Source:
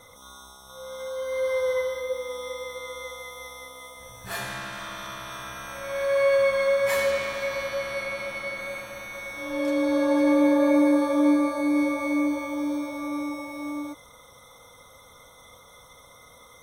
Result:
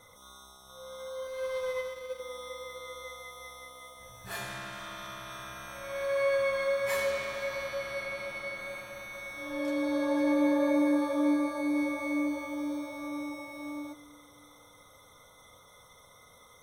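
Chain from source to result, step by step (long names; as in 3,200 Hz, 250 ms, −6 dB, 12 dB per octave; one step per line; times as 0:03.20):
0:01.27–0:02.20: power curve on the samples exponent 1.4
coupled-rooms reverb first 0.22 s, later 3.9 s, from −21 dB, DRR 10.5 dB
level −6 dB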